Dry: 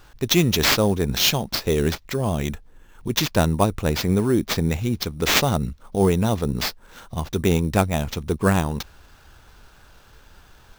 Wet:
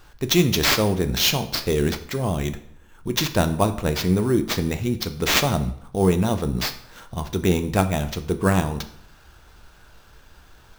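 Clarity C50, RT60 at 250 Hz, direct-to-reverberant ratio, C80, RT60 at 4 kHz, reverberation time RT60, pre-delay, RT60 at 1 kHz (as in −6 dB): 13.5 dB, 0.70 s, 8.5 dB, 16.5 dB, 0.55 s, 0.65 s, 3 ms, 0.65 s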